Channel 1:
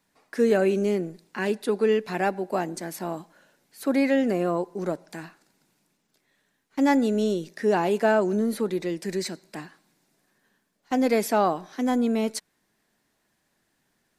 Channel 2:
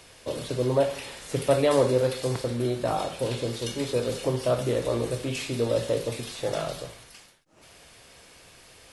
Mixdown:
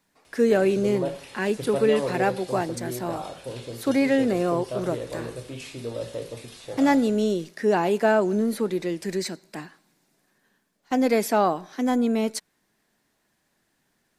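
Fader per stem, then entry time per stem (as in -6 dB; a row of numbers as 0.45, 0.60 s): +1.0, -7.0 dB; 0.00, 0.25 s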